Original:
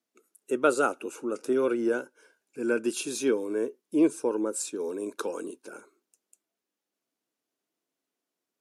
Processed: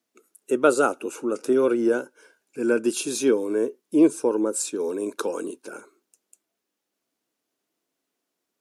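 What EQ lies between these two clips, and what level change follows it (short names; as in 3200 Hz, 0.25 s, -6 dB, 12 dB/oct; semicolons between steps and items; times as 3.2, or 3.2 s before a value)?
dynamic EQ 2100 Hz, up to -4 dB, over -41 dBFS, Q 0.92; +5.5 dB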